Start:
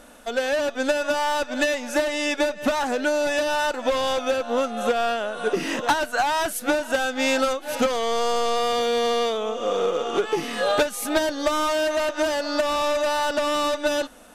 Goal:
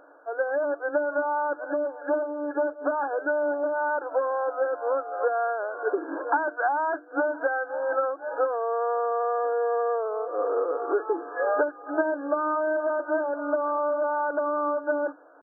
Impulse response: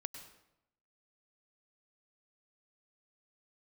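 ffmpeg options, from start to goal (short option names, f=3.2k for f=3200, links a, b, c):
-af "bandreject=f=50:t=h:w=6,bandreject=f=100:t=h:w=6,bandreject=f=150:t=h:w=6,bandreject=f=200:t=h:w=6,bandreject=f=250:t=h:w=6,bandreject=f=300:t=h:w=6,bandreject=f=350:t=h:w=6,atempo=0.93,afftfilt=real='re*between(b*sr/4096,270,1700)':imag='im*between(b*sr/4096,270,1700)':win_size=4096:overlap=0.75,volume=-2.5dB"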